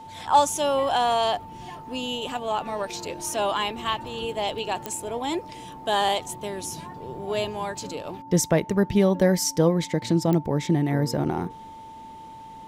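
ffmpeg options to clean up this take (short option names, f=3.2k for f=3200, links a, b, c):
-af "adeclick=t=4,bandreject=f=890:w=30"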